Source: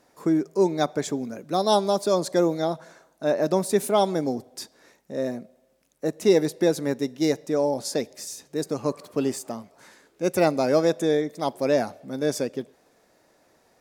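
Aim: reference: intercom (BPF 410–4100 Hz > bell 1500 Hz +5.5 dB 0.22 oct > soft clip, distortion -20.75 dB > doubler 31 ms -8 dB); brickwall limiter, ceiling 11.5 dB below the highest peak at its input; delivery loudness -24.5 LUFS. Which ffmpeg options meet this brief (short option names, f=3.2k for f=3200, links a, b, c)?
-filter_complex "[0:a]alimiter=limit=-18.5dB:level=0:latency=1,highpass=410,lowpass=4.1k,equalizer=f=1.5k:t=o:w=0.22:g=5.5,asoftclip=threshold=-22dB,asplit=2[a][b];[b]adelay=31,volume=-8dB[c];[a][c]amix=inputs=2:normalize=0,volume=9dB"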